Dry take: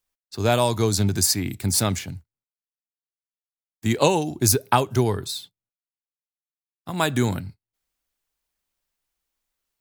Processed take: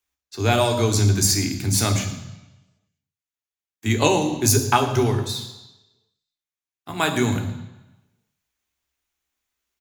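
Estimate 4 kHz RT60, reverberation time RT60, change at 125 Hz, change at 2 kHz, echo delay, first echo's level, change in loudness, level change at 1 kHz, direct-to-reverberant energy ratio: 1.0 s, 1.0 s, +3.0 dB, +3.5 dB, 0.113 s, -17.5 dB, +1.5 dB, +1.5 dB, 5.0 dB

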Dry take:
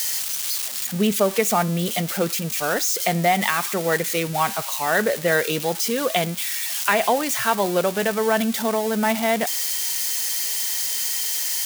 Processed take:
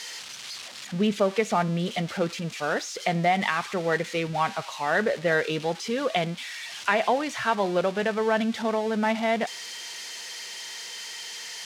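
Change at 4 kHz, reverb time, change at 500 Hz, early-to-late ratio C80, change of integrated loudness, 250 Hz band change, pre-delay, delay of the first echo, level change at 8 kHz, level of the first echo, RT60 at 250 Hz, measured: -6.0 dB, none, -3.5 dB, none, -6.0 dB, -3.5 dB, none, none, -14.5 dB, none, none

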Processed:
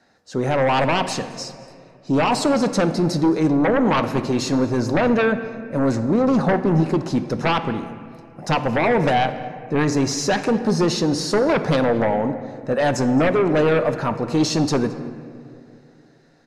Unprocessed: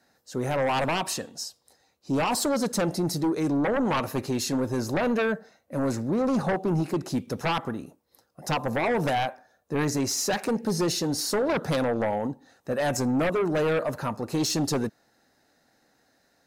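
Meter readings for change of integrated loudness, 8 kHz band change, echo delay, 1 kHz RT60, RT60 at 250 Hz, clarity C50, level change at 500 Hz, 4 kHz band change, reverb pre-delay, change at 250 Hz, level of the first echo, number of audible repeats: +7.0 dB, +0.5 dB, 0.219 s, 2.2 s, 2.9 s, 11.0 dB, +7.0 dB, +4.5 dB, 3 ms, +7.5 dB, -21.5 dB, 1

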